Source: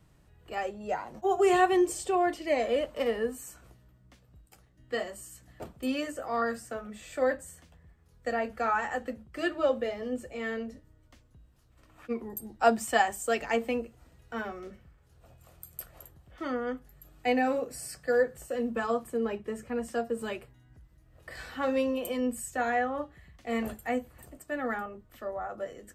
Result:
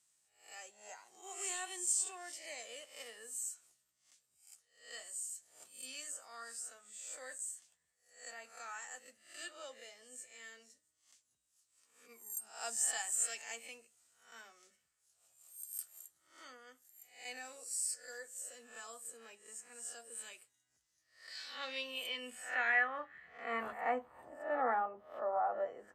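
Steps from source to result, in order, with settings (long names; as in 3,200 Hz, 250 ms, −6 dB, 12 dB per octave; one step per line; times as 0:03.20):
peak hold with a rise ahead of every peak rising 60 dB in 0.47 s
band-pass filter sweep 7,800 Hz → 850 Hz, 0:20.55–0:24.23
level +4.5 dB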